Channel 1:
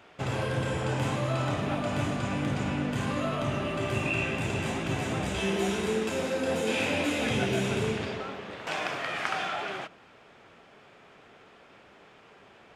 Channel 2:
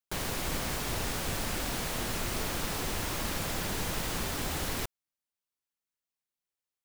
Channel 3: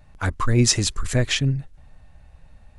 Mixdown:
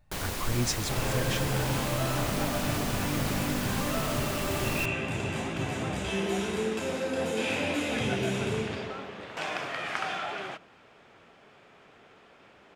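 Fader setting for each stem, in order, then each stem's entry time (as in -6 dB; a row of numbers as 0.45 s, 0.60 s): -1.5 dB, -0.5 dB, -12.0 dB; 0.70 s, 0.00 s, 0.00 s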